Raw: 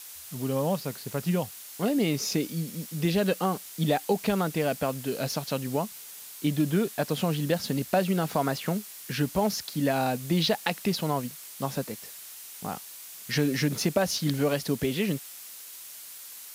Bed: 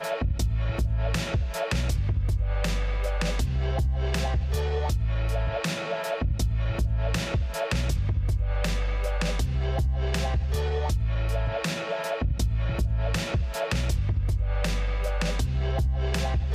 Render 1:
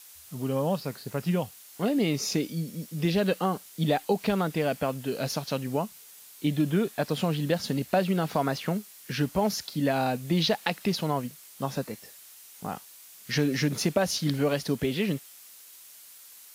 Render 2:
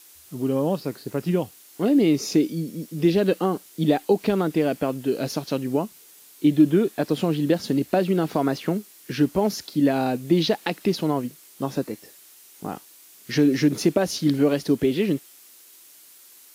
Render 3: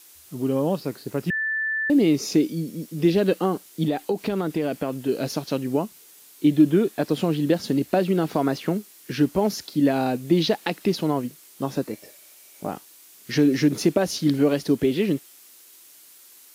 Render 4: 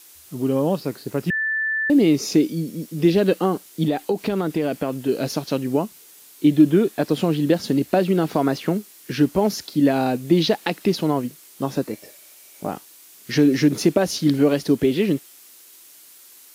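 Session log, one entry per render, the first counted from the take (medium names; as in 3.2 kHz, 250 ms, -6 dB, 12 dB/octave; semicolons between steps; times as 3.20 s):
noise print and reduce 6 dB
peaking EQ 330 Hz +11.5 dB 0.83 oct
1.30–1.90 s: bleep 1.76 kHz -22.5 dBFS; 3.84–5.09 s: compression 3:1, threshold -20 dBFS; 11.93–12.71 s: small resonant body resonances 600/2300 Hz, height 12 dB, ringing for 35 ms
trim +2.5 dB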